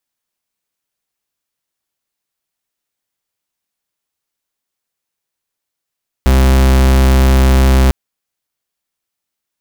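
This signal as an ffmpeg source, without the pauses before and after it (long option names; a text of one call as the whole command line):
ffmpeg -f lavfi -i "aevalsrc='0.376*(2*lt(mod(65.7*t,1),0.43)-1)':duration=1.65:sample_rate=44100" out.wav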